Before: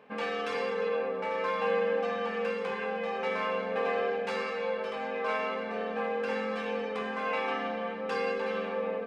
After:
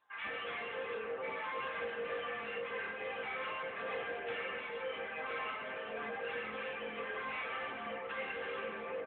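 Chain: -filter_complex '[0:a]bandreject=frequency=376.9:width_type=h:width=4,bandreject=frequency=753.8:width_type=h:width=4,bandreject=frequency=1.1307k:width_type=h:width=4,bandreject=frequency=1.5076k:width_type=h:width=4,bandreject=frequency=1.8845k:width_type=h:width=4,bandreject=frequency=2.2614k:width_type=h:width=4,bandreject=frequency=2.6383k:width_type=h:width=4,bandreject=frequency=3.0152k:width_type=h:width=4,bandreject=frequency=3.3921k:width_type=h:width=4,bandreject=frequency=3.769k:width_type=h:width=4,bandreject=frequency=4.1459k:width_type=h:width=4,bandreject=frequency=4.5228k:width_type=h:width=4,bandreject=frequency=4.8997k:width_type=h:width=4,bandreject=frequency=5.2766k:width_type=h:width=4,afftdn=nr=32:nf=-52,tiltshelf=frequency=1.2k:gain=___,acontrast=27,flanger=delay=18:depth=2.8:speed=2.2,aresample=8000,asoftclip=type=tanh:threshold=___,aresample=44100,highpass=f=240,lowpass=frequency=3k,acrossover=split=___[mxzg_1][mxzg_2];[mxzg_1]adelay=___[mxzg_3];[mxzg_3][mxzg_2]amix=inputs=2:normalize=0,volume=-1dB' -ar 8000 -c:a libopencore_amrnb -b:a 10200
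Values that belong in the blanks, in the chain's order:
-7, -32.5dB, 880, 140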